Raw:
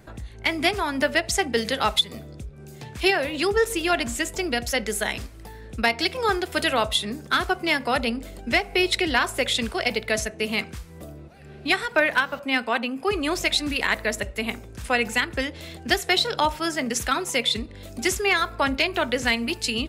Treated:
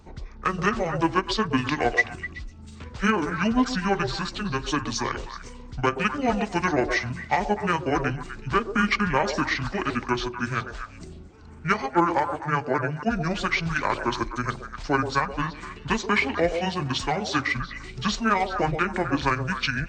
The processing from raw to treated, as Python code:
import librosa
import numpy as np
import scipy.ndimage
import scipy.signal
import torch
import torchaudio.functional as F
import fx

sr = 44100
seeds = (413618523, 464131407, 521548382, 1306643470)

y = fx.pitch_heads(x, sr, semitones=-10.0)
y = fx.echo_stepped(y, sr, ms=126, hz=490.0, octaves=1.4, feedback_pct=70, wet_db=-5)